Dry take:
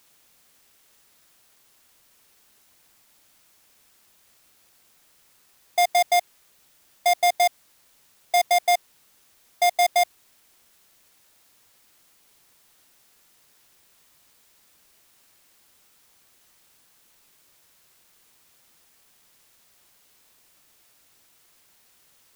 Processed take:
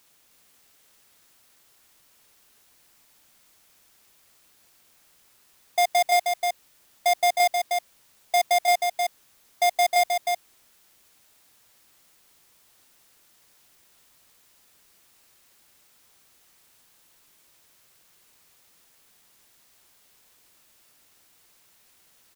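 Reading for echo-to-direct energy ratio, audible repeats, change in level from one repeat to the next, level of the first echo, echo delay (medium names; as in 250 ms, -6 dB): -4.5 dB, 1, no regular repeats, -4.5 dB, 312 ms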